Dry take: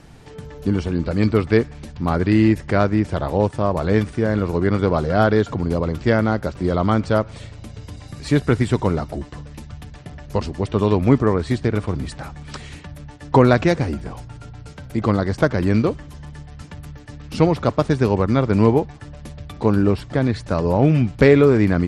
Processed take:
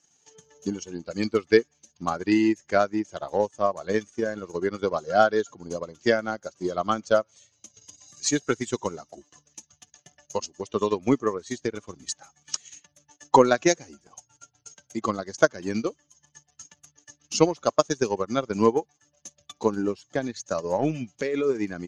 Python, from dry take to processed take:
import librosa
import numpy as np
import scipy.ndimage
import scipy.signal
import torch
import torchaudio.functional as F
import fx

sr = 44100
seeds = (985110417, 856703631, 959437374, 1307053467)

y = fx.bin_expand(x, sr, power=1.5)
y = fx.lowpass_res(y, sr, hz=6500.0, q=14.0)
y = fx.hpss(y, sr, part='percussive', gain_db=-3)
y = scipy.signal.sosfilt(scipy.signal.butter(2, 340.0, 'highpass', fs=sr, output='sos'), y)
y = fx.transient(y, sr, attack_db=7, sustain_db=-7)
y = fx.over_compress(y, sr, threshold_db=-19.0, ratio=-1.0, at=(20.88, 21.49), fade=0.02)
y = y * librosa.db_to_amplitude(-1.0)